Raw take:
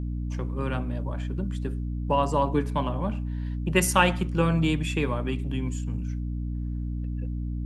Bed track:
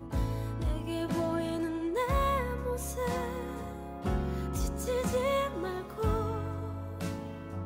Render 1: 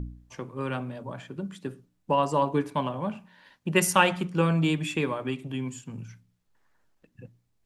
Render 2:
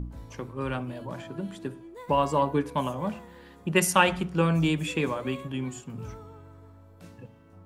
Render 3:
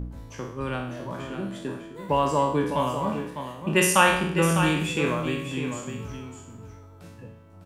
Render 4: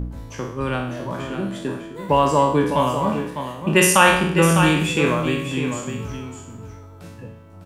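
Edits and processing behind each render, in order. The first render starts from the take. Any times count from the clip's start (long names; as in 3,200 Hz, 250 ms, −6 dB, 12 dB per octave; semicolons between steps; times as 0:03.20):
hum removal 60 Hz, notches 5
mix in bed track −13.5 dB
peak hold with a decay on every bin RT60 0.67 s; single-tap delay 603 ms −8.5 dB
level +6 dB; brickwall limiter −1 dBFS, peak gain reduction 3 dB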